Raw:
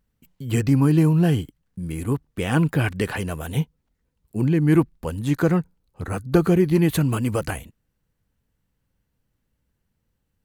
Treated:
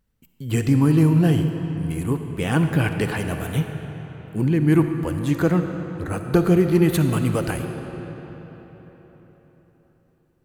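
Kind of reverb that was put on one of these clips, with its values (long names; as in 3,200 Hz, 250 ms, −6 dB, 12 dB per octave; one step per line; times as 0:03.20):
comb and all-pass reverb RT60 4.4 s, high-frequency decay 0.7×, pre-delay 10 ms, DRR 6 dB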